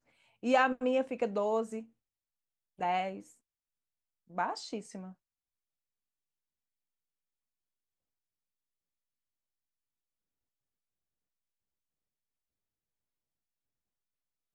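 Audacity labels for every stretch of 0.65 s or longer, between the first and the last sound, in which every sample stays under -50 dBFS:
1.850000	2.790000	silence
3.300000	4.300000	silence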